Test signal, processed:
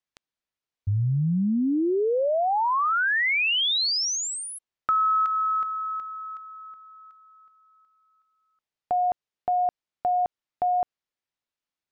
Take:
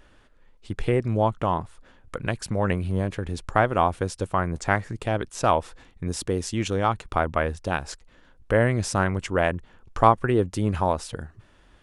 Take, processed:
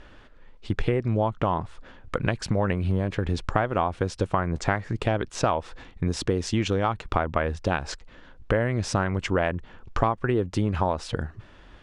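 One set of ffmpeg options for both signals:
-af "lowpass=5100,apsyclip=2.11,acompressor=threshold=0.1:ratio=6"

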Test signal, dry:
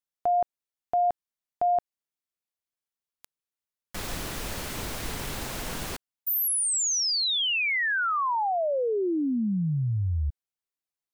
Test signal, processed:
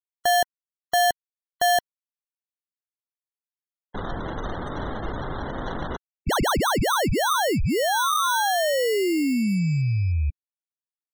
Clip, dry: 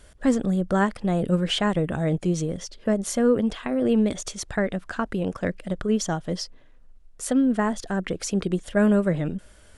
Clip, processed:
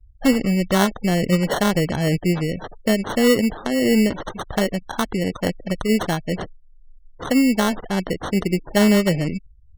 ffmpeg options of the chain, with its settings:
-af "acrusher=samples=18:mix=1:aa=0.000001,afftfilt=real='re*gte(hypot(re,im),0.0126)':imag='im*gte(hypot(re,im),0.0126)':win_size=1024:overlap=0.75,volume=1.58"

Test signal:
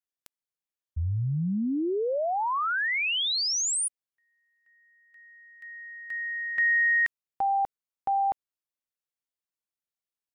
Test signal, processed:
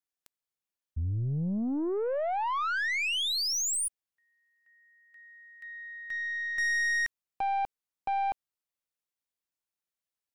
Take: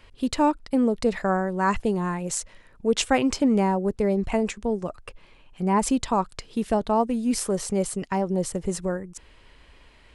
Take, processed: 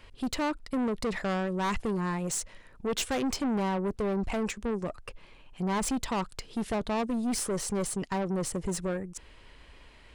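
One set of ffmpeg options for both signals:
-af "aeval=exprs='(tanh(20*val(0)+0.2)-tanh(0.2))/20':c=same"

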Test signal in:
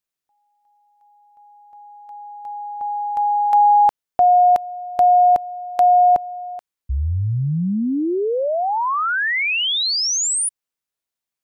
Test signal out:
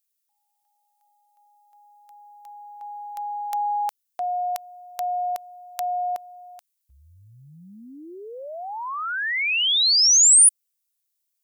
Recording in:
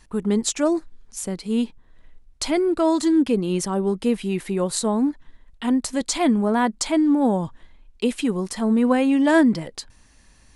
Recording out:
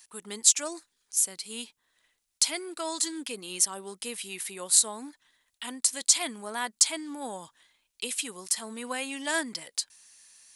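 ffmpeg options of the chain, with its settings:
-af "aderivative,volume=2.11"

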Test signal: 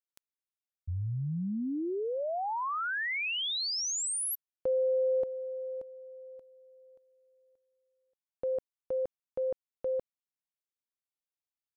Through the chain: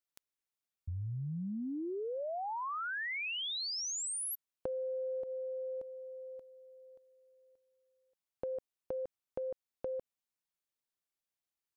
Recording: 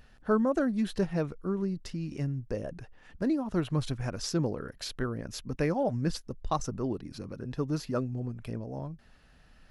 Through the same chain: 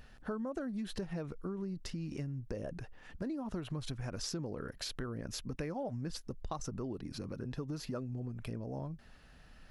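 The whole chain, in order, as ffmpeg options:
-af "acompressor=threshold=0.0126:ratio=6:attack=11:release=155:knee=6:detection=peak,volume=1.12"

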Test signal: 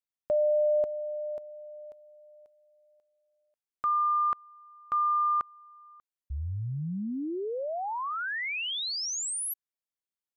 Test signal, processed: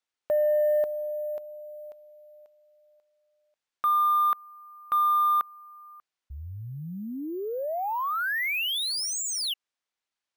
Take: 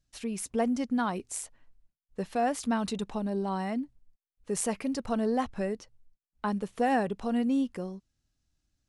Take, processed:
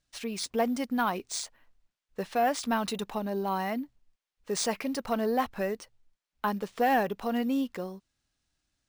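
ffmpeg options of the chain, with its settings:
-filter_complex "[0:a]acrusher=samples=3:mix=1:aa=0.000001,asplit=2[s0][s1];[s1]highpass=f=720:p=1,volume=3.16,asoftclip=type=tanh:threshold=0.188[s2];[s0][s2]amix=inputs=2:normalize=0,lowpass=f=6100:p=1,volume=0.501"

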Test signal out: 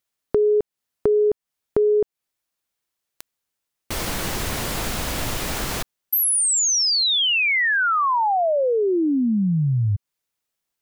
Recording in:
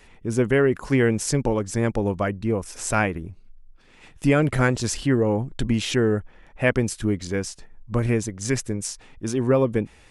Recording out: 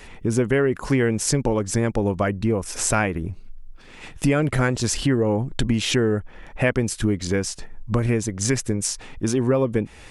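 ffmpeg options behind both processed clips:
-af "acompressor=threshold=0.0316:ratio=2.5,volume=2.82"

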